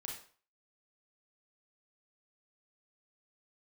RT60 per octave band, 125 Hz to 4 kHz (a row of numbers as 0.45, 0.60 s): 0.40, 0.40, 0.45, 0.45, 0.40, 0.40 s